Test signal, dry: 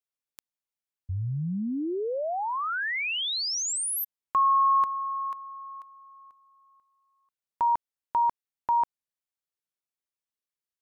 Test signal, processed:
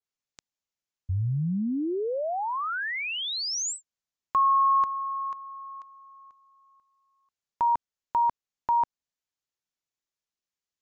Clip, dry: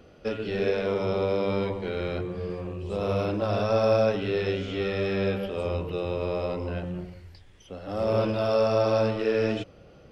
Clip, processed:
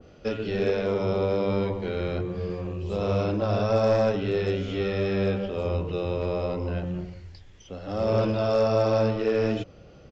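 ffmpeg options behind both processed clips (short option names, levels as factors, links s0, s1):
-af "lowshelf=f=240:g=4,crystalizer=i=1:c=0,aresample=16000,aeval=exprs='clip(val(0),-1,0.133)':c=same,aresample=44100,adynamicequalizer=threshold=0.0112:dfrequency=1700:dqfactor=0.7:tfrequency=1700:tqfactor=0.7:attack=5:release=100:ratio=0.375:range=2:mode=cutabove:tftype=highshelf"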